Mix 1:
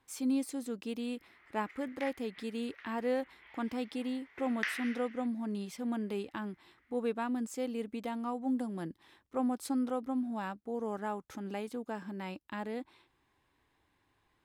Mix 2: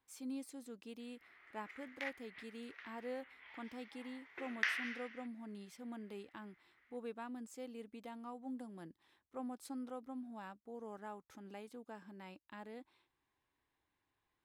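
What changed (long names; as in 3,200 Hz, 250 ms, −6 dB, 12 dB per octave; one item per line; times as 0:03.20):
speech −10.5 dB
master: add low-shelf EQ 410 Hz −3 dB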